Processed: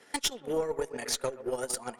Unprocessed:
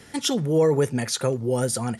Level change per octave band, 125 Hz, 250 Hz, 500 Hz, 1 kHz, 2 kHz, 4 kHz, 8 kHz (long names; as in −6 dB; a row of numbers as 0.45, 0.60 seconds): −23.5, −15.0, −10.0, −6.0, −4.5, −4.5, −4.5 decibels